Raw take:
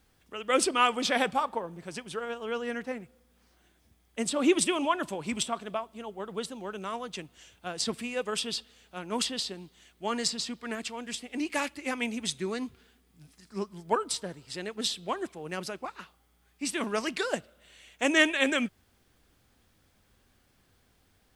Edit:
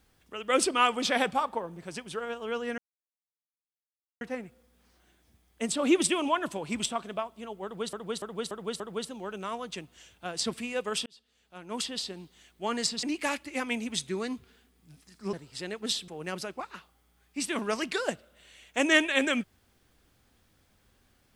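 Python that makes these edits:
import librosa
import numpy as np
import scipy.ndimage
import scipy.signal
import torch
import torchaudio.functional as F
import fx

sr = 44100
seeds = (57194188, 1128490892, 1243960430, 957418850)

y = fx.edit(x, sr, fx.insert_silence(at_s=2.78, length_s=1.43),
    fx.repeat(start_s=6.21, length_s=0.29, count=5),
    fx.fade_in_span(start_s=8.47, length_s=1.13),
    fx.cut(start_s=10.44, length_s=0.9),
    fx.cut(start_s=13.64, length_s=0.64),
    fx.cut(start_s=15.03, length_s=0.3), tone=tone)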